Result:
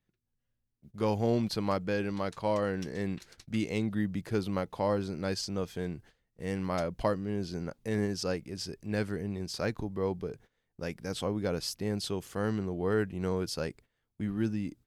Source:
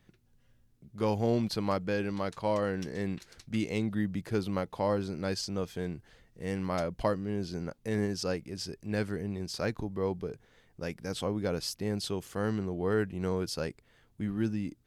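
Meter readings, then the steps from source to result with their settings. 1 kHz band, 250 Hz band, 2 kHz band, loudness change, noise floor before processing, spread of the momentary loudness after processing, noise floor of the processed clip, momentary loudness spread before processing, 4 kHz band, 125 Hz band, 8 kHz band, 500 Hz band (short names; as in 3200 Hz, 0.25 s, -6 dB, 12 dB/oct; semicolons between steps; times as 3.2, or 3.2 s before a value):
0.0 dB, 0.0 dB, 0.0 dB, 0.0 dB, -66 dBFS, 8 LU, -82 dBFS, 8 LU, 0.0 dB, 0.0 dB, 0.0 dB, 0.0 dB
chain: gate -53 dBFS, range -17 dB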